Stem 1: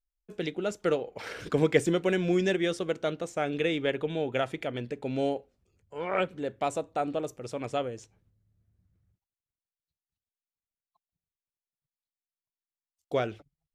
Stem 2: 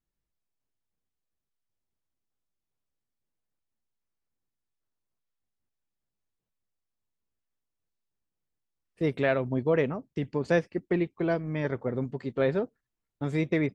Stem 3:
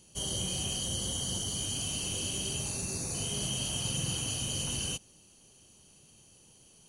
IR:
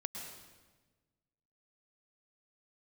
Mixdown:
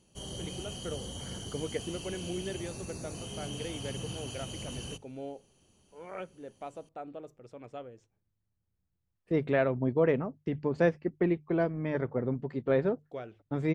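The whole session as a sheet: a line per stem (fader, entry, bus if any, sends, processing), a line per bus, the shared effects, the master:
−12.0 dB, 0.00 s, no send, no processing
−0.5 dB, 0.30 s, no send, no processing
−2.5 dB, 0.00 s, no send, no processing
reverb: not used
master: high-shelf EQ 3,200 Hz −11.5 dB; mains-hum notches 50/100/150 Hz

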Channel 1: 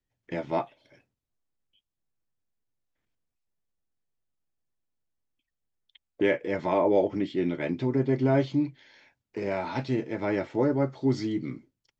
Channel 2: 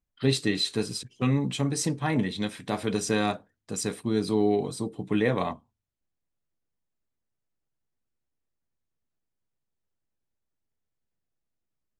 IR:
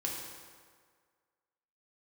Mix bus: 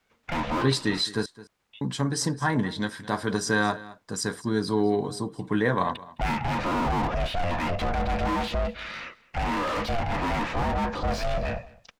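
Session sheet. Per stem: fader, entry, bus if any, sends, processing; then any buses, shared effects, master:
−4.5 dB, 0.00 s, no send, echo send −22.5 dB, parametric band 260 Hz −5.5 dB 0.77 octaves; mid-hump overdrive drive 39 dB, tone 1,800 Hz, clips at −12.5 dBFS; ring modulation 350 Hz
−1.0 dB, 0.40 s, muted 0:01.26–0:01.81, no send, echo send −18.5 dB, thirty-one-band graphic EQ 1,000 Hz +10 dB, 1,600 Hz +12 dB, 2,500 Hz −10 dB, 5,000 Hz +7 dB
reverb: not used
echo: single-tap delay 213 ms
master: low-shelf EQ 150 Hz +3.5 dB

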